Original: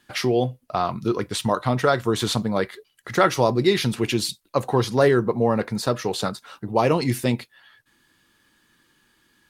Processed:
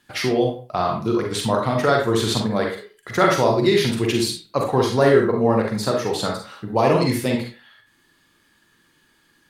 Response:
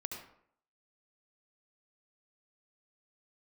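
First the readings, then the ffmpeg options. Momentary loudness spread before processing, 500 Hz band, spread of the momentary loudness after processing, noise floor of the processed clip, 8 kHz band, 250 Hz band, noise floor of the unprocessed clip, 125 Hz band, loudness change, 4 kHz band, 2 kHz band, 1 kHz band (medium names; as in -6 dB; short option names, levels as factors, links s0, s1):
8 LU, +3.0 dB, 9 LU, -61 dBFS, +1.5 dB, +2.5 dB, -65 dBFS, +1.0 dB, +2.5 dB, +2.0 dB, +2.5 dB, +2.0 dB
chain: -filter_complex "[1:a]atrim=start_sample=2205,asetrate=74970,aresample=44100[s0];[0:a][s0]afir=irnorm=-1:irlink=0,volume=2.37"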